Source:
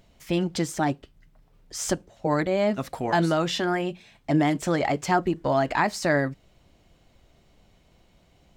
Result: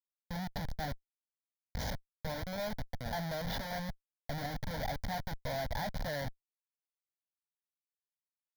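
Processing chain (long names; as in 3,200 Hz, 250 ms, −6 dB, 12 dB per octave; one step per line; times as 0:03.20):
comparator with hysteresis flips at −26 dBFS
phaser with its sweep stopped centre 1,800 Hz, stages 8
level −6.5 dB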